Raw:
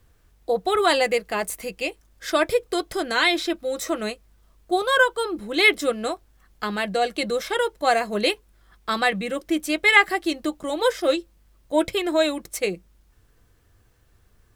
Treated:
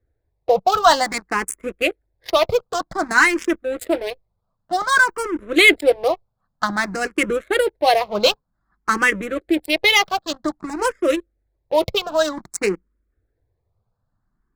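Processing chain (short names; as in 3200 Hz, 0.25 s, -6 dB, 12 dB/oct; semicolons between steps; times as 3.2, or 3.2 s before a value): Wiener smoothing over 15 samples; 10.31–12.14 dynamic EQ 1300 Hz, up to -5 dB, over -36 dBFS, Q 1.2; harmonic-percussive split percussive +8 dB; sample leveller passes 3; endless phaser +0.53 Hz; gain -6.5 dB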